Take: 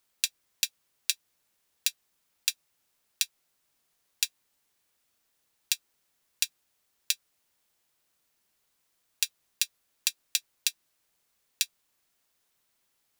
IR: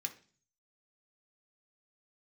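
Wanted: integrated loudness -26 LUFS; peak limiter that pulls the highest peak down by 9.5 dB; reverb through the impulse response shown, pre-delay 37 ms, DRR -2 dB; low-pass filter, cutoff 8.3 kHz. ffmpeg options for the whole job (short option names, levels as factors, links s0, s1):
-filter_complex "[0:a]lowpass=8300,alimiter=limit=0.188:level=0:latency=1,asplit=2[s0][s1];[1:a]atrim=start_sample=2205,adelay=37[s2];[s1][s2]afir=irnorm=-1:irlink=0,volume=1.41[s3];[s0][s3]amix=inputs=2:normalize=0,volume=3.55"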